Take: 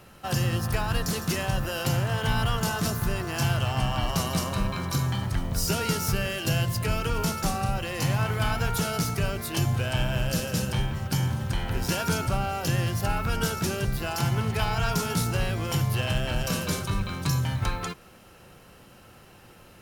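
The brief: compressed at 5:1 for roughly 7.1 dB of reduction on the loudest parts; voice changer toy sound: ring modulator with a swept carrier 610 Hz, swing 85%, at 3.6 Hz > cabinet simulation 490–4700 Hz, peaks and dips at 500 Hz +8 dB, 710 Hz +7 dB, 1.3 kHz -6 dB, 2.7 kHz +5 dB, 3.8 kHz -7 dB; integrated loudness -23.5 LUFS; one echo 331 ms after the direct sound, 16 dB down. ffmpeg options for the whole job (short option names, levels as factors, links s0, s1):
-af "acompressor=threshold=0.0355:ratio=5,aecho=1:1:331:0.158,aeval=exprs='val(0)*sin(2*PI*610*n/s+610*0.85/3.6*sin(2*PI*3.6*n/s))':c=same,highpass=490,equalizer=f=500:t=q:w=4:g=8,equalizer=f=710:t=q:w=4:g=7,equalizer=f=1300:t=q:w=4:g=-6,equalizer=f=2700:t=q:w=4:g=5,equalizer=f=3800:t=q:w=4:g=-7,lowpass=f=4700:w=0.5412,lowpass=f=4700:w=1.3066,volume=3.76"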